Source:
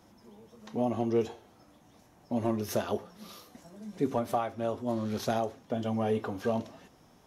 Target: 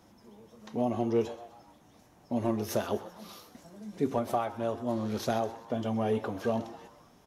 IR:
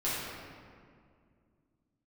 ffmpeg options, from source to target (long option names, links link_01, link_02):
-filter_complex "[0:a]asplit=5[link_01][link_02][link_03][link_04][link_05];[link_02]adelay=128,afreqshift=120,volume=-17dB[link_06];[link_03]adelay=256,afreqshift=240,volume=-23dB[link_07];[link_04]adelay=384,afreqshift=360,volume=-29dB[link_08];[link_05]adelay=512,afreqshift=480,volume=-35.1dB[link_09];[link_01][link_06][link_07][link_08][link_09]amix=inputs=5:normalize=0"